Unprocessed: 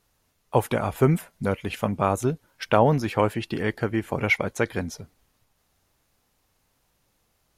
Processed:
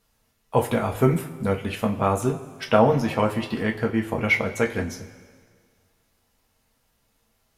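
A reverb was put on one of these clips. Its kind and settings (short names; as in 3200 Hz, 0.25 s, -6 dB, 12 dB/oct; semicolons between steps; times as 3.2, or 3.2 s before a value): two-slope reverb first 0.23 s, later 1.8 s, from -18 dB, DRR 1 dB; gain -1.5 dB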